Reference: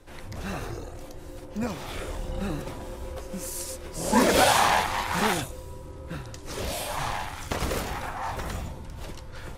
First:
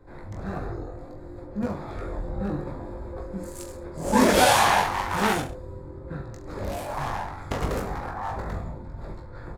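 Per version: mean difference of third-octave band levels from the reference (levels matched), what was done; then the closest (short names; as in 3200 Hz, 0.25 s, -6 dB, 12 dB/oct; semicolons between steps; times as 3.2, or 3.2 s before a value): 6.5 dB: Wiener smoothing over 15 samples; reverse bouncing-ball echo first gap 20 ms, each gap 1.15×, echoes 5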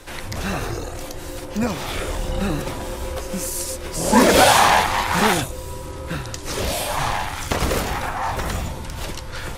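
2.0 dB: in parallel at -7 dB: soft clip -17 dBFS, distortion -14 dB; on the sum: mismatched tape noise reduction encoder only; gain +4.5 dB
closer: second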